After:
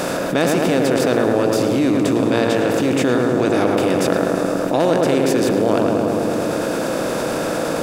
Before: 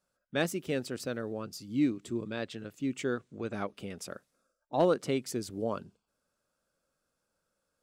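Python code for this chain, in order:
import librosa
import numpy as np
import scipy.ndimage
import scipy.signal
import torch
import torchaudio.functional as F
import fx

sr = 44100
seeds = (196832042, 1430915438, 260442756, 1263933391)

y = fx.bin_compress(x, sr, power=0.4)
y = fx.echo_filtered(y, sr, ms=108, feedback_pct=75, hz=2000.0, wet_db=-3)
y = fx.env_flatten(y, sr, amount_pct=70)
y = F.gain(torch.from_numpy(y), 3.0).numpy()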